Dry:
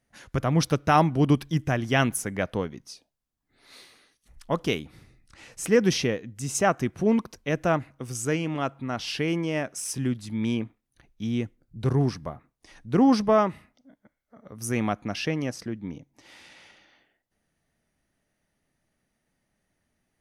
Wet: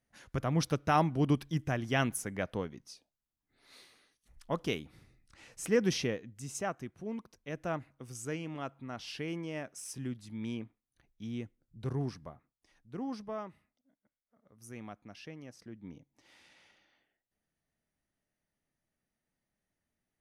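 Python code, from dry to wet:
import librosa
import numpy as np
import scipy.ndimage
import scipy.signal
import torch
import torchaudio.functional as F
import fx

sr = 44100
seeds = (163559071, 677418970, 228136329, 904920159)

y = fx.gain(x, sr, db=fx.line((6.15, -7.5), (7.04, -18.0), (7.76, -11.5), (12.22, -11.5), (12.88, -19.5), (15.47, -19.5), (15.88, -11.5)))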